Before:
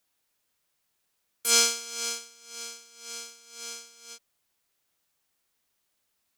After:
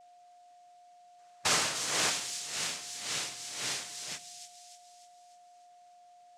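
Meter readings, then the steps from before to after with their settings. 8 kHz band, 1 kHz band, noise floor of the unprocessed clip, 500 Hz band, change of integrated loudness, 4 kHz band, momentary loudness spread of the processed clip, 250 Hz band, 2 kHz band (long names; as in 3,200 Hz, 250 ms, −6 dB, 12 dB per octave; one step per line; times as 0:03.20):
−4.0 dB, +2.0 dB, −77 dBFS, −2.0 dB, −5.5 dB, −2.5 dB, 14 LU, +2.0 dB, +2.0 dB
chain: gain on a spectral selection 0:01.18–0:02.09, 460–3,100 Hz +8 dB
downward compressor 12 to 1, threshold −28 dBFS, peak gain reduction 16.5 dB
cochlear-implant simulation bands 3
steady tone 710 Hz −60 dBFS
delay with a high-pass on its return 299 ms, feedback 49%, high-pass 4,200 Hz, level −6.5 dB
rectangular room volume 2,800 cubic metres, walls furnished, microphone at 0.47 metres
level +5.5 dB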